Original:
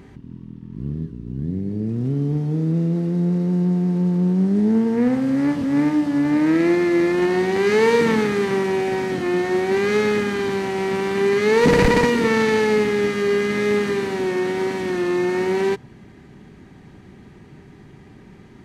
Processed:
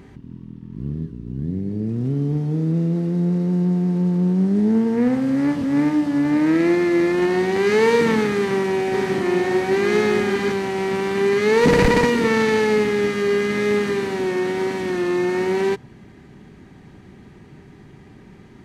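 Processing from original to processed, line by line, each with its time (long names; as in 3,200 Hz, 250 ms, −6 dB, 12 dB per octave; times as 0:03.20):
0:08.35–0:10.52: single-tap delay 588 ms −5 dB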